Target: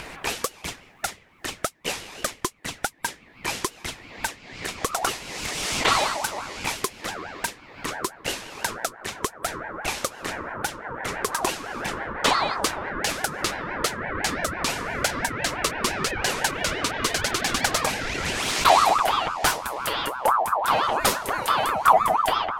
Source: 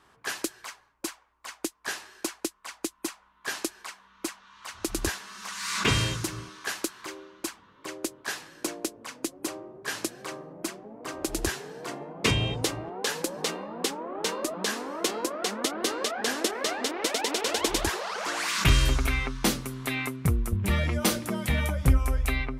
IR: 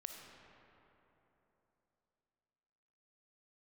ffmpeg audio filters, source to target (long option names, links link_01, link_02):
-af "acompressor=mode=upward:threshold=-26dB:ratio=2.5,aeval=exprs='val(0)*sin(2*PI*980*n/s+980*0.3/5.9*sin(2*PI*5.9*n/s))':channel_layout=same,volume=6dB"